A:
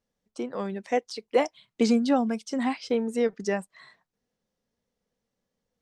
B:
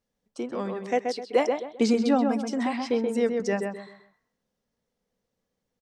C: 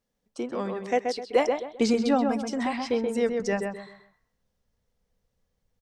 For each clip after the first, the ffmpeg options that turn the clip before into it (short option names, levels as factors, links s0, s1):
-filter_complex "[0:a]asplit=2[s0][s1];[s1]adelay=130,lowpass=f=2100:p=1,volume=0.631,asplit=2[s2][s3];[s3]adelay=130,lowpass=f=2100:p=1,volume=0.32,asplit=2[s4][s5];[s5]adelay=130,lowpass=f=2100:p=1,volume=0.32,asplit=2[s6][s7];[s7]adelay=130,lowpass=f=2100:p=1,volume=0.32[s8];[s0][s2][s4][s6][s8]amix=inputs=5:normalize=0"
-af "asubboost=boost=6:cutoff=100,volume=1.12"